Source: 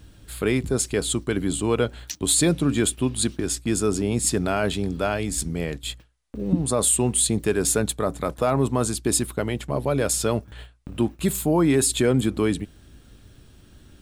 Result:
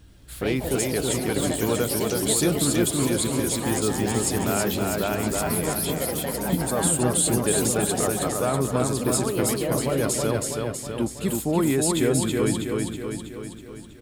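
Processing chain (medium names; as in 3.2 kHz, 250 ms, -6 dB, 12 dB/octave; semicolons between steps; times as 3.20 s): feedback delay 323 ms, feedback 58%, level -3 dB; ever faster or slower copies 81 ms, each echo +4 st, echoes 3, each echo -6 dB; trim -3.5 dB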